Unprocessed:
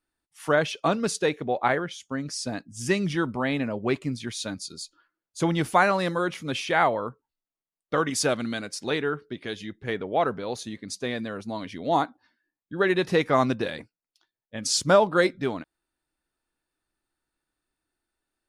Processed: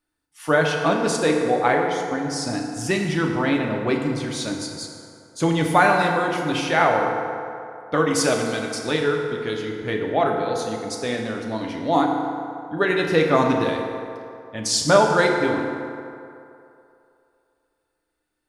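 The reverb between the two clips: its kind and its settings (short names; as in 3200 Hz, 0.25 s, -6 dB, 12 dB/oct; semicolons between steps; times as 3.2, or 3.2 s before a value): FDN reverb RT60 2.7 s, low-frequency decay 0.75×, high-frequency decay 0.5×, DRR 0.5 dB; gain +2 dB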